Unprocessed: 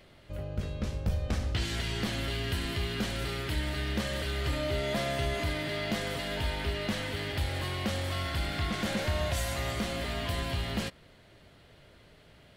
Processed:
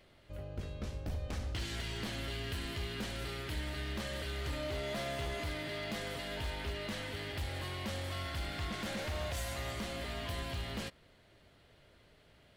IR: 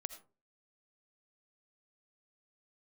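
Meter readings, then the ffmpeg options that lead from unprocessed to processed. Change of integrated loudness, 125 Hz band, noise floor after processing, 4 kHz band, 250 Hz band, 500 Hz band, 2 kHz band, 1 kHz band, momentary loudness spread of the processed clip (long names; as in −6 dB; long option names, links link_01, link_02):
−7.0 dB, −7.5 dB, −64 dBFS, −6.0 dB, −8.0 dB, −6.5 dB, −6.0 dB, −6.5 dB, 3 LU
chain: -af "aeval=exprs='0.0562*(abs(mod(val(0)/0.0562+3,4)-2)-1)':channel_layout=same,equalizer=frequency=160:width_type=o:width=0.99:gain=-2.5,volume=-6dB"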